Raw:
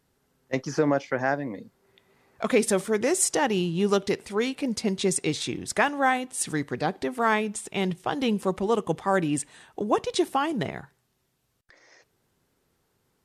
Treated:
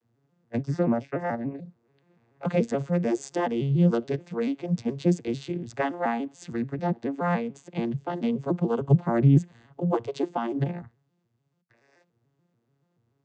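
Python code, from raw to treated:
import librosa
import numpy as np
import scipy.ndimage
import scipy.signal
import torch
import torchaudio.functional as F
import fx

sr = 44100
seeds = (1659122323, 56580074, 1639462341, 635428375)

y = fx.vocoder_arp(x, sr, chord='minor triad', root=46, every_ms=144)
y = fx.low_shelf(y, sr, hz=210.0, db=11.0, at=(8.81, 9.79))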